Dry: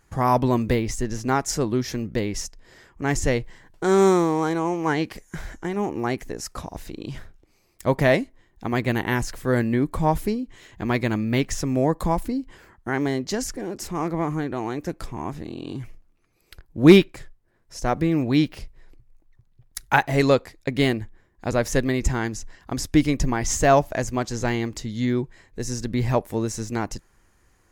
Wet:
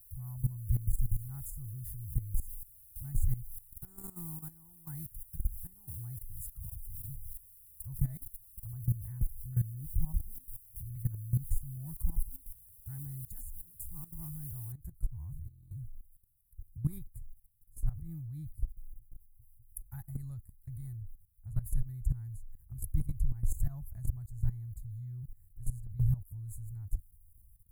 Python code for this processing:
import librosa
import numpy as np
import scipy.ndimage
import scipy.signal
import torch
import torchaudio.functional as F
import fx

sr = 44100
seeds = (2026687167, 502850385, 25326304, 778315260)

y = fx.cheby2_lowpass(x, sr, hz=7600.0, order=4, stop_db=40, at=(3.36, 3.88))
y = fx.filter_lfo_lowpass(y, sr, shape='saw_down', hz=2.1, low_hz=250.0, high_hz=3500.0, q=1.1, at=(8.69, 11.49), fade=0.02)
y = fx.noise_floor_step(y, sr, seeds[0], at_s=14.72, before_db=-43, after_db=-65, tilt_db=0.0)
y = scipy.signal.sosfilt(scipy.signal.cheby2(4, 40, [210.0, 6100.0], 'bandstop', fs=sr, output='sos'), y)
y = fx.high_shelf(y, sr, hz=6200.0, db=-6.0)
y = fx.level_steps(y, sr, step_db=16)
y = y * librosa.db_to_amplitude(7.0)